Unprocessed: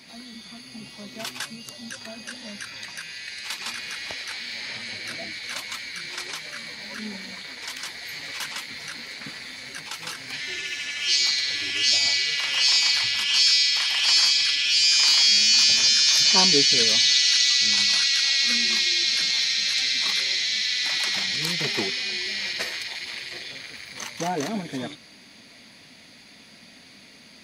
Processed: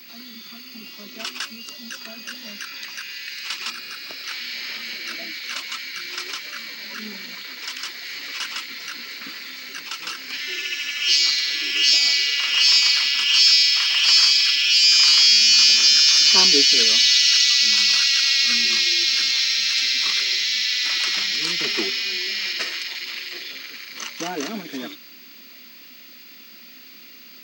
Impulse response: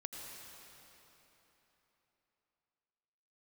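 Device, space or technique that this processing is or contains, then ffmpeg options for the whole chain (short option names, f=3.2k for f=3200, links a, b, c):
old television with a line whistle: -filter_complex "[0:a]highpass=f=210:w=0.5412,highpass=f=210:w=1.3066,equalizer=f=340:t=q:w=4:g=4,equalizer=f=540:t=q:w=4:g=-4,equalizer=f=800:t=q:w=4:g=-7,equalizer=f=1.3k:t=q:w=4:g=6,equalizer=f=2.8k:t=q:w=4:g=7,equalizer=f=5.2k:t=q:w=4:g=6,lowpass=f=8.4k:w=0.5412,lowpass=f=8.4k:w=1.3066,aeval=exprs='val(0)+0.00631*sin(2*PI*15734*n/s)':c=same,asettb=1/sr,asplit=3[a][b][c];[a]atrim=end=3.704[d];[b]atrim=start=3.7:end=4.24,asetpts=PTS-STARTPTS,afade=t=in:d=0.004:c=qsin,afade=t=out:st=0.536:d=0.004:c=qsin,equalizer=f=125:t=o:w=0.33:g=12,equalizer=f=1k:t=o:w=0.33:g=-6,equalizer=f=2k:t=o:w=0.33:g=-9,equalizer=f=3.15k:t=o:w=0.33:g=-9,equalizer=f=6.3k:t=o:w=0.33:g=-8[e];[c]atrim=start=4.236[f];[d][e]acrossfade=d=0.004:c1=hsin:c2=qsin[g];[g][f]acrossfade=d=0.004:c1=qsin:c2=hsin"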